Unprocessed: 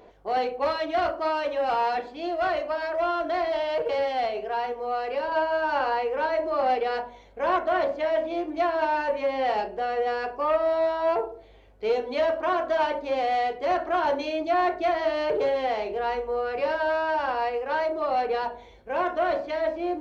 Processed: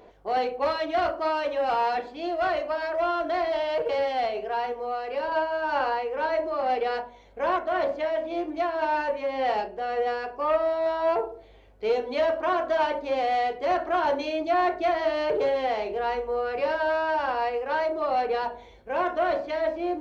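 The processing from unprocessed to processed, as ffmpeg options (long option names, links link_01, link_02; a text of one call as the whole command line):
ffmpeg -i in.wav -filter_complex "[0:a]asettb=1/sr,asplit=3[link_01][link_02][link_03];[link_01]atrim=end=4.764[link_04];[link_02]atrim=start=4.76:end=10.86,asetpts=PTS-STARTPTS,afade=type=in:duration=0.004:curve=qsin,afade=type=out:start_time=6.096:duration=0.004:curve=qsin,tremolo=f=1.9:d=0.3[link_05];[link_03]atrim=start=10.856[link_06];[link_04][link_05]acrossfade=duration=0.004:curve1=hsin:curve2=qsin[link_07];[link_07][link_06]acrossfade=duration=0.004:curve1=qsin:curve2=hsin" out.wav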